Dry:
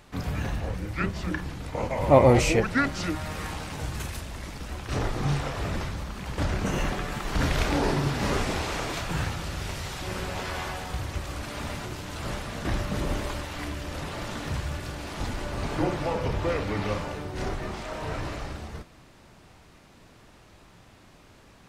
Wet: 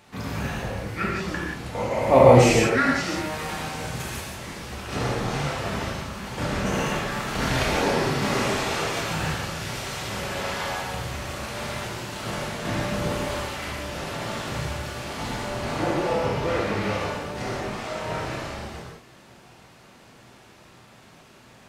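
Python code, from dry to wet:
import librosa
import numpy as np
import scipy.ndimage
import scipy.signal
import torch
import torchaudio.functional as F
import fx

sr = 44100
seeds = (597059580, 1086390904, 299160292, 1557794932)

y = fx.highpass(x, sr, hz=140.0, slope=6)
y = fx.rev_gated(y, sr, seeds[0], gate_ms=200, shape='flat', drr_db=-4.5)
y = F.gain(torch.from_numpy(y), -1.0).numpy()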